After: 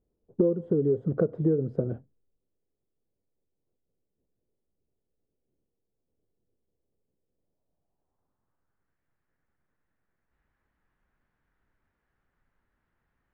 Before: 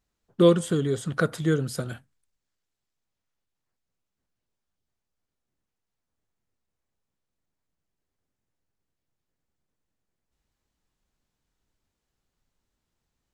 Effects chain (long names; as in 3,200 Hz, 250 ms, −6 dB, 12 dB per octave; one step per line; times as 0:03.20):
low-pass filter sweep 450 Hz → 1,700 Hz, 0:07.27–0:08.95
downward compressor 10 to 1, threshold −23 dBFS, peak gain reduction 16 dB
level +2.5 dB